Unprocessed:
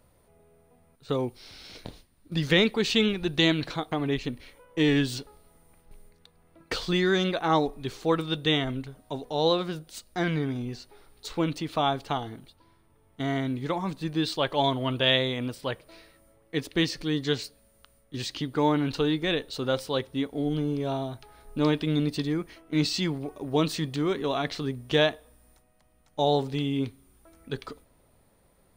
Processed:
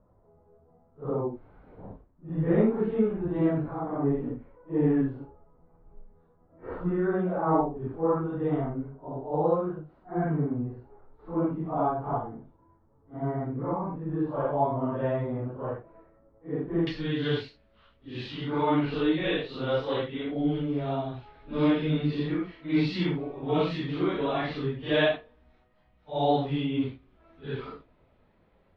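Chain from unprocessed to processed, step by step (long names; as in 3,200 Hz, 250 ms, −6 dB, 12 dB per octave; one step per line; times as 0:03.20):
random phases in long frames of 200 ms
low-pass filter 1,200 Hz 24 dB per octave, from 0:16.87 3,300 Hz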